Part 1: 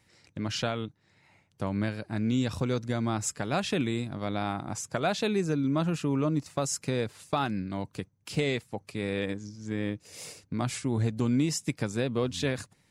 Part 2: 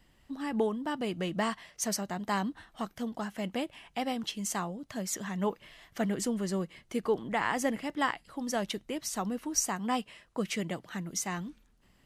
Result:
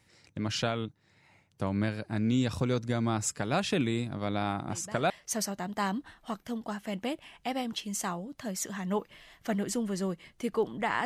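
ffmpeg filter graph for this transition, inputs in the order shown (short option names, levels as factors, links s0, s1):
-filter_complex "[1:a]asplit=2[s0][s1];[0:a]apad=whole_dur=11.05,atrim=end=11.05,atrim=end=5.102[s2];[s1]atrim=start=1.608:end=7.56[s3];[s0]atrim=start=1.13:end=1.61,asetpts=PTS-STARTPTS,volume=0.178,afade=t=in:d=0.004:c=hsin,afade=t=out:st=0.476:d=0.004:c=hsin,adelay=4620[s4];[s2][s3]acrossfade=d=0.004:c1=hsin:c2=hsin[s5];[s5][s4]amix=inputs=2:normalize=0"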